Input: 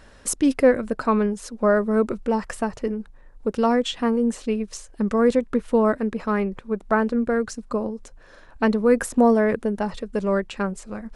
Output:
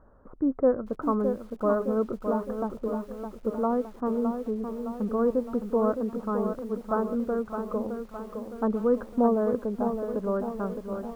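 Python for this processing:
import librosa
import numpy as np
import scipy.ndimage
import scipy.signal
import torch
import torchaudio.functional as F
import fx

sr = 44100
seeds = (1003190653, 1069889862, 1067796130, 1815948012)

y = scipy.signal.sosfilt(scipy.signal.ellip(4, 1.0, 60, 1300.0, 'lowpass', fs=sr, output='sos'), x)
y = fx.echo_crushed(y, sr, ms=613, feedback_pct=55, bits=8, wet_db=-7)
y = F.gain(torch.from_numpy(y), -6.0).numpy()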